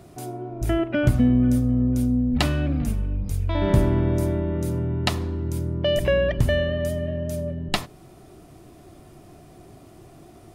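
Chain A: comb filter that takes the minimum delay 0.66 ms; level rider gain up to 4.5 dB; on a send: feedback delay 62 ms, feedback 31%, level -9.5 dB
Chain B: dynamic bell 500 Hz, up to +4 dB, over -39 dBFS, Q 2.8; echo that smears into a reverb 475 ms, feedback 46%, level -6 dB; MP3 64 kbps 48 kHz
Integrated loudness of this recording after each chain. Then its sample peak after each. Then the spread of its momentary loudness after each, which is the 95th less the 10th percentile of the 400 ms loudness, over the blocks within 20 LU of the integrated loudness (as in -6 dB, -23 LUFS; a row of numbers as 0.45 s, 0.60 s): -20.5 LUFS, -22.5 LUFS; -3.0 dBFS, -4.5 dBFS; 8 LU, 15 LU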